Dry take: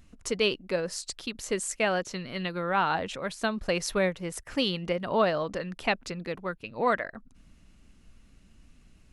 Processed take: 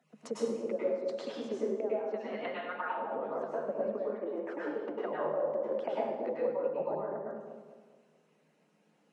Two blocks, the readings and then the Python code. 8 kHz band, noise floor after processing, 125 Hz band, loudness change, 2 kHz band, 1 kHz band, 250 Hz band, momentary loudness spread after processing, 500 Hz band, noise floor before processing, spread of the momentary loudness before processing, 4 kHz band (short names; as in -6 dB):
under -20 dB, -70 dBFS, -16.0 dB, -5.5 dB, -13.5 dB, -8.0 dB, -7.0 dB, 6 LU, -2.0 dB, -58 dBFS, 9 LU, under -15 dB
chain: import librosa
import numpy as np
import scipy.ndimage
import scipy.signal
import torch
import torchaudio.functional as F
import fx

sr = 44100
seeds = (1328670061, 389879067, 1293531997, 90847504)

y = fx.hpss_only(x, sr, part='percussive')
y = fx.high_shelf(y, sr, hz=2300.0, db=-9.5)
y = fx.rider(y, sr, range_db=3, speed_s=0.5)
y = fx.env_lowpass_down(y, sr, base_hz=360.0, full_db=-32.5)
y = scipy.signal.sosfilt(scipy.signal.cheby1(6, 9, 150.0, 'highpass', fs=sr, output='sos'), y)
y = fx.low_shelf(y, sr, hz=260.0, db=-10.0)
y = fx.echo_wet_lowpass(y, sr, ms=213, feedback_pct=39, hz=850.0, wet_db=-5.5)
y = fx.rev_plate(y, sr, seeds[0], rt60_s=0.87, hf_ratio=0.95, predelay_ms=90, drr_db=-6.5)
y = y * librosa.db_to_amplitude(6.0)